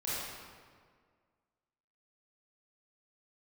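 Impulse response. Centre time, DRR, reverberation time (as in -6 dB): 132 ms, -10.0 dB, 1.8 s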